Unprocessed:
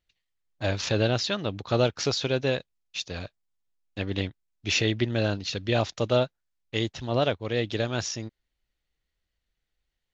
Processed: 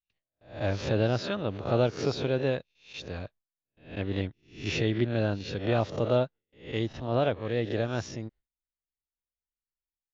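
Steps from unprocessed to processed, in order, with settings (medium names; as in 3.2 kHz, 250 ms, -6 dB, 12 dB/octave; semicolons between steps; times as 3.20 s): reverse spectral sustain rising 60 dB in 0.41 s; gate with hold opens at -52 dBFS; low-pass 1.3 kHz 6 dB/octave; trim -1.5 dB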